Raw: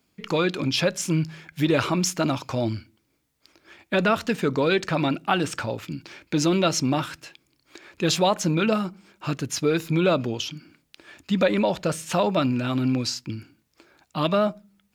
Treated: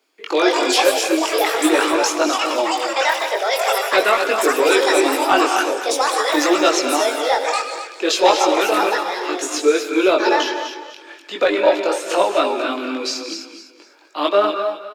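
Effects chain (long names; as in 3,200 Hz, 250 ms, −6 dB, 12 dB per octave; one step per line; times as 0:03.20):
Butterworth high-pass 310 Hz 48 dB per octave
high-shelf EQ 8,300 Hz −8.5 dB
reverb whose tail is shaped and stops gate 270 ms rising, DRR 6.5 dB
in parallel at −5 dB: asymmetric clip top −15.5 dBFS
on the sum: delay with pitch and tempo change per echo 181 ms, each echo +6 semitones, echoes 2
on a send: repeating echo 252 ms, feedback 29%, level −10.5 dB
on the sum: multi-voice chorus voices 2, 0.45 Hz, delay 21 ms, depth 1.6 ms
level +5.5 dB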